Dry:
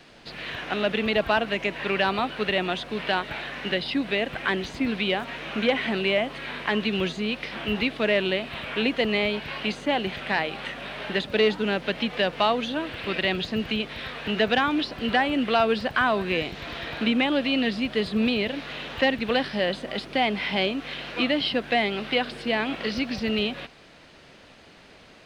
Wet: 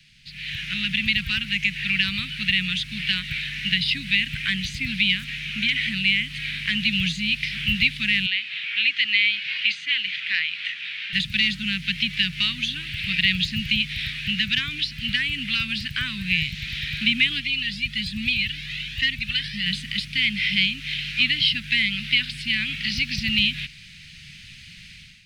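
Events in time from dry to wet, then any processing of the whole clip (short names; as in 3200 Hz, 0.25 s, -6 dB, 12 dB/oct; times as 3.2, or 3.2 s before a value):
8.26–11.13 BPF 670–4000 Hz
17.4–19.66 cascading flanger rising 1.2 Hz
whole clip: AGC; Chebyshev band-stop 160–2200 Hz, order 3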